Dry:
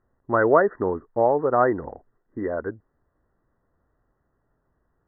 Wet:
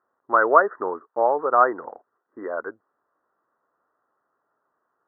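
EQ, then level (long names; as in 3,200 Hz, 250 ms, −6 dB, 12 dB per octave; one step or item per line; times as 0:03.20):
high-pass filter 400 Hz 12 dB per octave
low-pass with resonance 1,300 Hz, resonance Q 2.9
−2.0 dB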